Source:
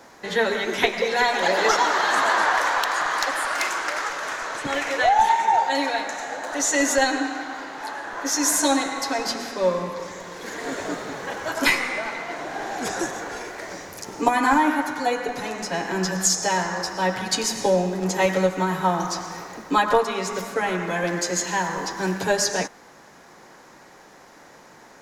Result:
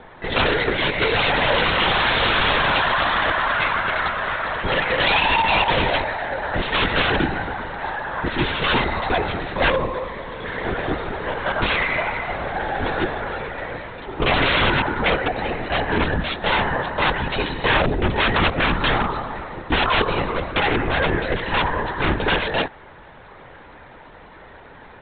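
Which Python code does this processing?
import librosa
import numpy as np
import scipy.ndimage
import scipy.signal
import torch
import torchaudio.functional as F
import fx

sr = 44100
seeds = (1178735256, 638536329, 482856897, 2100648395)

y = (np.mod(10.0 ** (16.5 / 20.0) * x + 1.0, 2.0) - 1.0) / 10.0 ** (16.5 / 20.0)
y = fx.lpc_vocoder(y, sr, seeds[0], excitation='whisper', order=16)
y = y * 10.0 ** (5.5 / 20.0)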